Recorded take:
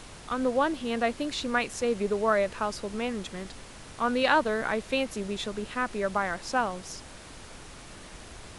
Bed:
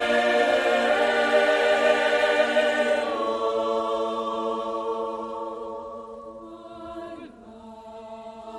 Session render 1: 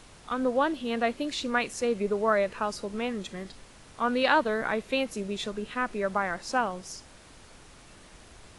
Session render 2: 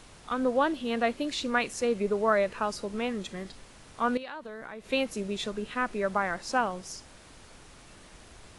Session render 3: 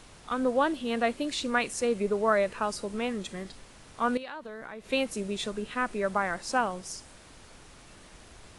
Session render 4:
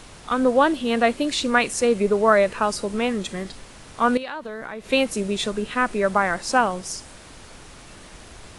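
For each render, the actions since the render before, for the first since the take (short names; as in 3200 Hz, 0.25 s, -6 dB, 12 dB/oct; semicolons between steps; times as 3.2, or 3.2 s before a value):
noise print and reduce 6 dB
4.17–4.92 compressor, threshold -38 dBFS
dynamic EQ 8800 Hz, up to +6 dB, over -60 dBFS, Q 2.3
gain +8 dB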